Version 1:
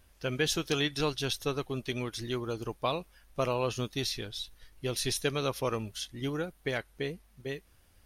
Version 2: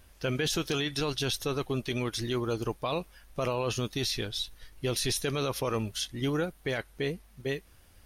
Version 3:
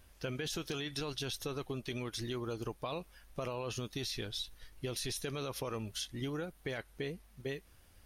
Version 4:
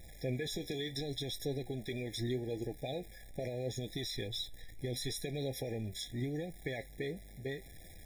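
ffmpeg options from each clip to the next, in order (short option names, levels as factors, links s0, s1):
-af "alimiter=level_in=1.26:limit=0.0631:level=0:latency=1:release=14,volume=0.794,volume=1.78"
-af "acompressor=threshold=0.0282:ratio=6,volume=0.631"
-af "aeval=exprs='val(0)+0.5*0.00447*sgn(val(0))':c=same,flanger=delay=5.6:depth=5:regen=66:speed=0.76:shape=triangular,afftfilt=real='re*eq(mod(floor(b*sr/1024/820),2),0)':imag='im*eq(mod(floor(b*sr/1024/820),2),0)':win_size=1024:overlap=0.75,volume=1.58"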